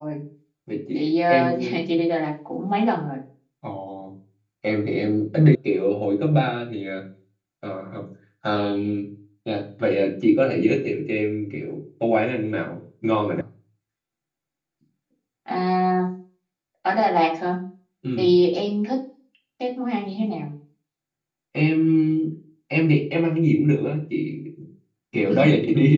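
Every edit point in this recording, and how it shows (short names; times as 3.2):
5.55 sound cut off
13.41 sound cut off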